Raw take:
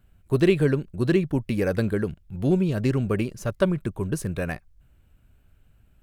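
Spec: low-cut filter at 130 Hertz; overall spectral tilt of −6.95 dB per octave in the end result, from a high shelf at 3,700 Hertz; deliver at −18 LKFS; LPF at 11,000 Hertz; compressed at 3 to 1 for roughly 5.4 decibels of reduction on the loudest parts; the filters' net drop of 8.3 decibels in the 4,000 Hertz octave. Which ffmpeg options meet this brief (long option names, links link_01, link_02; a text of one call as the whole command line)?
ffmpeg -i in.wav -af "highpass=130,lowpass=11000,highshelf=frequency=3700:gain=-7.5,equalizer=frequency=4000:width_type=o:gain=-7,acompressor=threshold=-22dB:ratio=3,volume=10.5dB" out.wav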